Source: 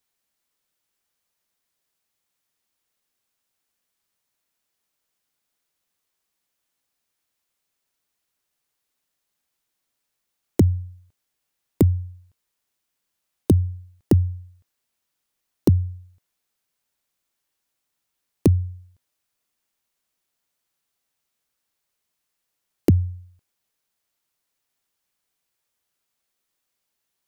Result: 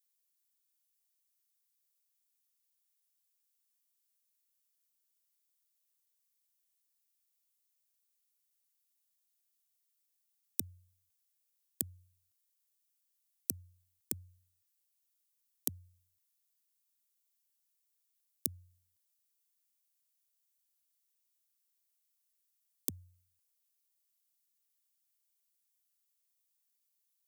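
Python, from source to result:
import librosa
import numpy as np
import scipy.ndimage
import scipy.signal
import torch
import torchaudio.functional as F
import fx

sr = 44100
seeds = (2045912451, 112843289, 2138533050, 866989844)

y = fx.tracing_dist(x, sr, depth_ms=0.41)
y = librosa.effects.preemphasis(y, coef=0.97, zi=[0.0])
y = y * 10.0 ** (-4.0 / 20.0)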